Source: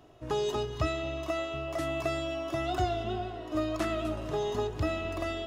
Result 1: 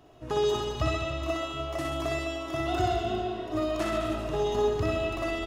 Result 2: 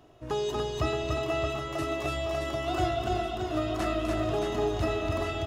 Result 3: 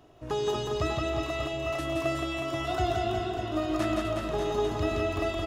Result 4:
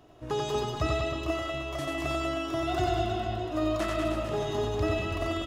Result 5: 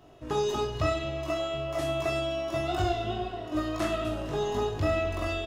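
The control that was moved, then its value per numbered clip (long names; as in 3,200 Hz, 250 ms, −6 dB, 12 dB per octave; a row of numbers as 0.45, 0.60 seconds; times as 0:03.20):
reverse bouncing-ball delay, first gap: 60, 290, 170, 90, 20 milliseconds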